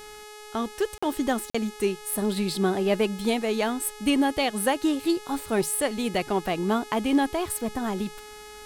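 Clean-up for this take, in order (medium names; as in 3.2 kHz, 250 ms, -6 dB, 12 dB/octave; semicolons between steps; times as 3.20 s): de-hum 422.1 Hz, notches 29; interpolate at 0.98/1.50 s, 45 ms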